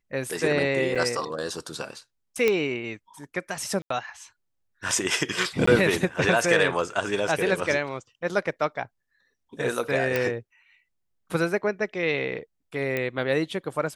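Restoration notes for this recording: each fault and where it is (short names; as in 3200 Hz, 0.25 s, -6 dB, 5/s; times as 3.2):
0.95–0.96 gap 5.7 ms
2.48 pop -9 dBFS
3.82–3.9 gap 84 ms
5.66–5.67 gap 14 ms
10.16 pop
12.97 pop -14 dBFS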